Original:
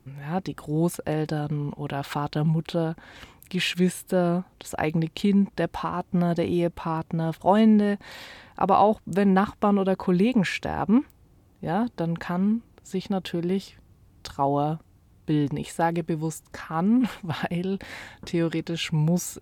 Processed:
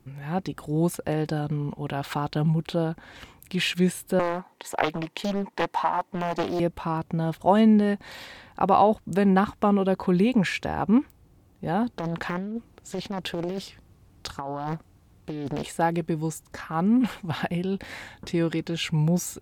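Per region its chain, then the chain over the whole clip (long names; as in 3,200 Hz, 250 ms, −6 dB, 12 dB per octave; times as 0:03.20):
0:04.19–0:06.60: high-pass filter 280 Hz + hollow resonant body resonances 930/1,900 Hz, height 11 dB, ringing for 25 ms + highs frequency-modulated by the lows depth 0.95 ms
0:11.98–0:15.67: low-shelf EQ 260 Hz −3.5 dB + compressor whose output falls as the input rises −29 dBFS + highs frequency-modulated by the lows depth 0.76 ms
whole clip: no processing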